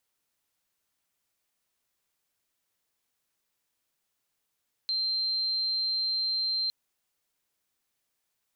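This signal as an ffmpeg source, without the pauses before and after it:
-f lavfi -i "aevalsrc='0.0501*sin(2*PI*4140*t)':d=1.81:s=44100"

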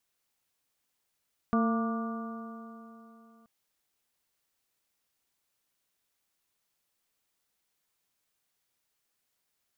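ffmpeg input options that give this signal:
-f lavfi -i "aevalsrc='0.0668*pow(10,-3*t/3.26)*sin(2*PI*225.43*t)+0.0211*pow(10,-3*t/3.26)*sin(2*PI*453.41*t)+0.0237*pow(10,-3*t/3.26)*sin(2*PI*686.45*t)+0.00708*pow(10,-3*t/3.26)*sin(2*PI*926.96*t)+0.0335*pow(10,-3*t/3.26)*sin(2*PI*1177.23*t)+0.00891*pow(10,-3*t/3.26)*sin(2*PI*1439.38*t)':d=1.93:s=44100"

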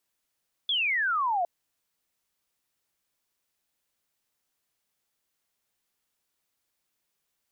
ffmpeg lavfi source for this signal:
-f lavfi -i "aevalsrc='0.0668*clip(t/0.002,0,1)*clip((0.76-t)/0.002,0,1)*sin(2*PI*3500*0.76/log(670/3500)*(exp(log(670/3500)*t/0.76)-1))':d=0.76:s=44100"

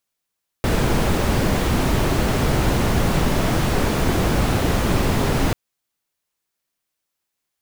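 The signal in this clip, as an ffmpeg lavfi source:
-f lavfi -i "anoisesrc=c=brown:a=0.589:d=4.89:r=44100:seed=1"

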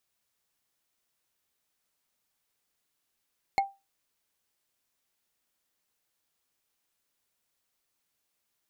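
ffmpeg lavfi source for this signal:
-f lavfi -i "aevalsrc='0.126*pow(10,-3*t/0.24)*sin(2*PI*788*t)+0.0631*pow(10,-3*t/0.071)*sin(2*PI*2172.5*t)+0.0316*pow(10,-3*t/0.032)*sin(2*PI*4258.4*t)+0.0158*pow(10,-3*t/0.017)*sin(2*PI*7039.2*t)+0.00794*pow(10,-3*t/0.011)*sin(2*PI*10511.9*t)':d=0.45:s=44100"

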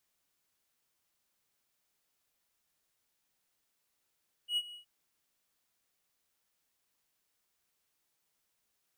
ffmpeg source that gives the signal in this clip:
-f lavfi -i "aevalsrc='0.0562*(1-4*abs(mod(2910*t+0.25,1)-0.5))':d=0.369:s=44100,afade=t=in:d=0.09,afade=t=out:st=0.09:d=0.048:silence=0.126,afade=t=out:st=0.26:d=0.109"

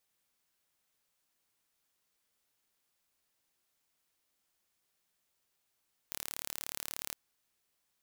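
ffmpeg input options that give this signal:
-f lavfi -i "aevalsrc='0.266*eq(mod(n,1202),0)':d=1.03:s=44100"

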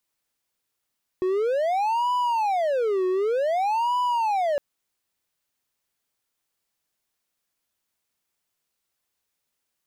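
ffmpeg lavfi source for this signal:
-f lavfi -i "aevalsrc='0.119*(1-4*abs(mod((678.5*t-310.5/(2*PI*0.54)*sin(2*PI*0.54*t))+0.25,1)-0.5))':d=3.36:s=44100"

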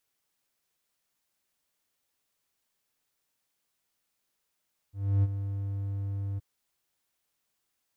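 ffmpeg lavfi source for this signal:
-f lavfi -i "aevalsrc='0.133*(1-4*abs(mod(99.1*t+0.25,1)-0.5))':d=1.471:s=44100,afade=t=in:d=0.302,afade=t=out:st=0.302:d=0.037:silence=0.299,afade=t=out:st=1.45:d=0.021"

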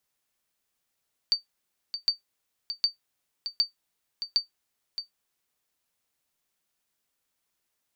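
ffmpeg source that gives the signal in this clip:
-f lavfi -i "aevalsrc='0.2*(sin(2*PI*4600*mod(t,0.76))*exp(-6.91*mod(t,0.76)/0.13)+0.316*sin(2*PI*4600*max(mod(t,0.76)-0.62,0))*exp(-6.91*max(mod(t,0.76)-0.62,0)/0.13))':d=3.8:s=44100"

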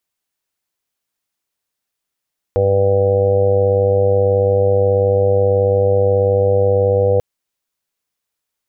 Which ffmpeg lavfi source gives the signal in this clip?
-f lavfi -i "aevalsrc='0.133*sin(2*PI*98.4*t)+0.0282*sin(2*PI*196.8*t)+0.0178*sin(2*PI*295.2*t)+0.0531*sin(2*PI*393.6*t)+0.237*sin(2*PI*492*t)+0.0794*sin(2*PI*590.4*t)+0.0299*sin(2*PI*688.8*t)+0.0335*sin(2*PI*787.2*t)':d=4.64:s=44100"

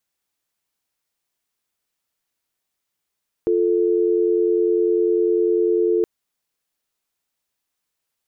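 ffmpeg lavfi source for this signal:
-f lavfi -i "aevalsrc='0.126*(sin(2*PI*350*t)+sin(2*PI*440*t))':d=2.57:s=44100"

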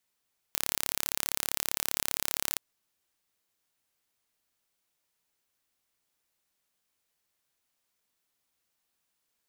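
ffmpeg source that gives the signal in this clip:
-f lavfi -i "aevalsrc='0.794*eq(mod(n,1253),0)':d=2.03:s=44100"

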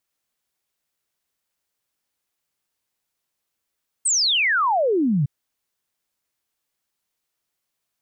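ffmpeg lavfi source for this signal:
-f lavfi -i "aevalsrc='0.15*clip(min(t,1.21-t)/0.01,0,1)*sin(2*PI*8800*1.21/log(130/8800)*(exp(log(130/8800)*t/1.21)-1))':d=1.21:s=44100"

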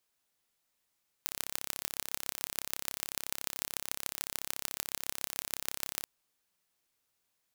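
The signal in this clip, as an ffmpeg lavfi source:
-f lavfi -i "aevalsrc='0.596*eq(mod(n,1301),0)*(0.5+0.5*eq(mod(n,6505),0))':d=4.79:s=44100"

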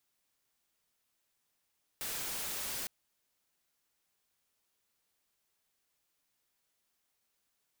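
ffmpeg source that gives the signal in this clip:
-f lavfi -i "anoisesrc=c=white:a=0.0206:d=0.86:r=44100:seed=1"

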